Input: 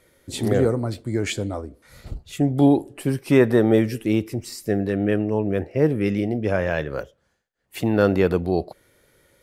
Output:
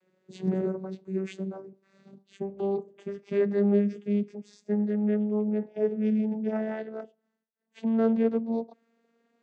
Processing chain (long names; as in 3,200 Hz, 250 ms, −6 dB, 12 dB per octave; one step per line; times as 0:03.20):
vocoder with a gliding carrier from F#3, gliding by +4 semitones
level −6 dB